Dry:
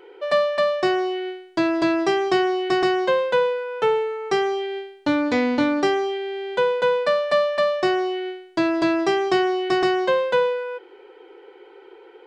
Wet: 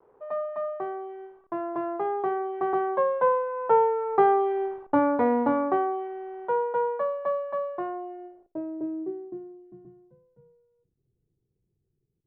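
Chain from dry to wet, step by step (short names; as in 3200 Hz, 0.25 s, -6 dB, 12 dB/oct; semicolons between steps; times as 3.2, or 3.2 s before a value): level-crossing sampler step -42.5 dBFS; Doppler pass-by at 4.45, 12 m/s, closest 9.1 m; tone controls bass -4 dB, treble -11 dB; on a send: flutter echo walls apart 9.3 m, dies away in 0.2 s; on the sum: low-pass sweep 1000 Hz -> 130 Hz, 7.86–10.15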